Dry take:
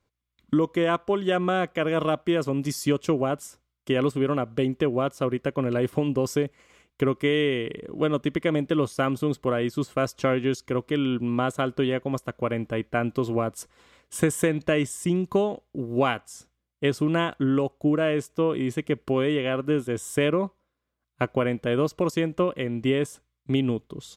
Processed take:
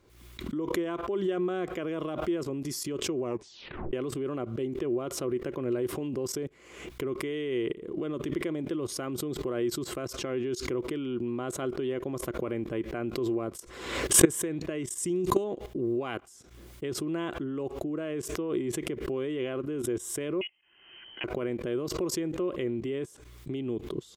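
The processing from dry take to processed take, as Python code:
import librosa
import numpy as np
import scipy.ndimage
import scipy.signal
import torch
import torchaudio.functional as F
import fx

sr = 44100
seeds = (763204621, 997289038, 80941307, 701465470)

y = fx.peak_eq(x, sr, hz=8000.0, db=10.0, octaves=1.7, at=(14.98, 15.44))
y = fx.freq_invert(y, sr, carrier_hz=3100, at=(20.41, 21.24))
y = fx.edit(y, sr, fx.tape_stop(start_s=3.21, length_s=0.72), tone=tone)
y = fx.level_steps(y, sr, step_db=18)
y = fx.peak_eq(y, sr, hz=360.0, db=12.0, octaves=0.4)
y = fx.pre_swell(y, sr, db_per_s=62.0)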